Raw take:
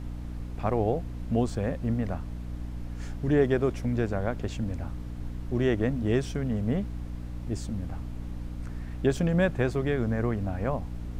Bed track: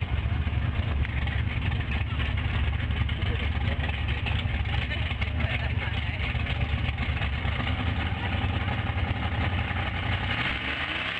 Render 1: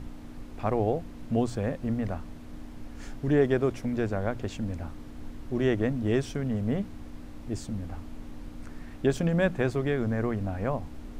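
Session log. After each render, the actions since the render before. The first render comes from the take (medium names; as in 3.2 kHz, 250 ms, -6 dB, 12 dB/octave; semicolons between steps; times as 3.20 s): hum notches 60/120/180 Hz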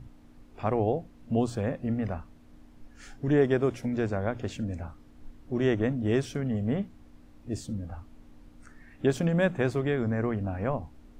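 noise print and reduce 11 dB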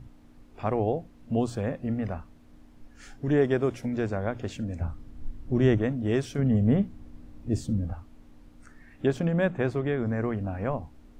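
4.81–5.78 s: bass shelf 190 Hz +11.5 dB; 6.38–7.93 s: bass shelf 420 Hz +8 dB; 9.08–10.06 s: treble shelf 4.6 kHz -10 dB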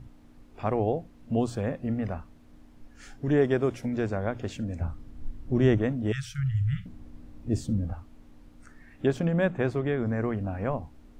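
6.12–6.86 s: brick-wall FIR band-stop 160–1200 Hz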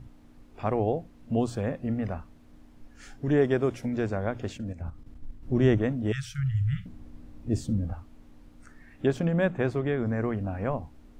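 4.52–5.43 s: level held to a coarse grid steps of 11 dB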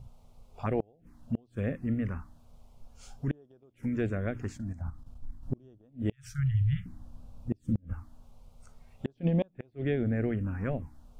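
touch-sensitive phaser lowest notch 270 Hz, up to 2.1 kHz, full sweep at -20 dBFS; inverted gate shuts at -18 dBFS, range -34 dB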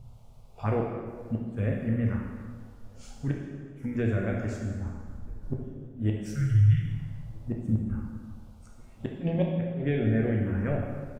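echo from a far wall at 220 m, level -27 dB; plate-style reverb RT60 1.7 s, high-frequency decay 0.8×, DRR -1 dB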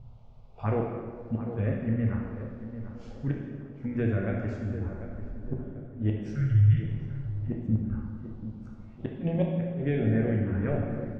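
distance through air 190 m; tape echo 742 ms, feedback 51%, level -9 dB, low-pass 1.2 kHz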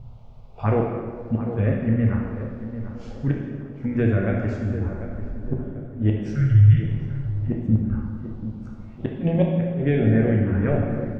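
trim +7 dB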